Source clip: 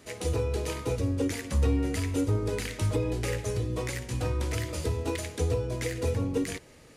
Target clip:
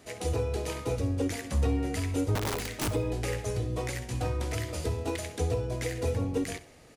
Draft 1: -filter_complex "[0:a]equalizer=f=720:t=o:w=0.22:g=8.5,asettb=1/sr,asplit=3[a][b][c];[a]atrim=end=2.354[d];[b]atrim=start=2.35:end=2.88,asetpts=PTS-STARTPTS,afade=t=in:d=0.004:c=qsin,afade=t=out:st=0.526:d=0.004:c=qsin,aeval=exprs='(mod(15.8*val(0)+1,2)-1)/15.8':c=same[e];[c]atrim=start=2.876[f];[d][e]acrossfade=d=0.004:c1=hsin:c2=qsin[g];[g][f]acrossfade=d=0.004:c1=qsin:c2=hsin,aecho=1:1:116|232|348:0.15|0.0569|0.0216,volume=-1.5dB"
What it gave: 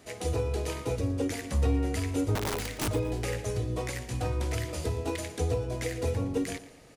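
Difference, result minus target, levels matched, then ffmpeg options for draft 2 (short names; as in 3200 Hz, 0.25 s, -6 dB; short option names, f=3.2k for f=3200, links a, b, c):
echo 50 ms late
-filter_complex "[0:a]equalizer=f=720:t=o:w=0.22:g=8.5,asettb=1/sr,asplit=3[a][b][c];[a]atrim=end=2.354[d];[b]atrim=start=2.35:end=2.88,asetpts=PTS-STARTPTS,afade=t=in:d=0.004:c=qsin,afade=t=out:st=0.526:d=0.004:c=qsin,aeval=exprs='(mod(15.8*val(0)+1,2)-1)/15.8':c=same[e];[c]atrim=start=2.876[f];[d][e]acrossfade=d=0.004:c1=hsin:c2=qsin[g];[g][f]acrossfade=d=0.004:c1=qsin:c2=hsin,aecho=1:1:66|132|198:0.15|0.0569|0.0216,volume=-1.5dB"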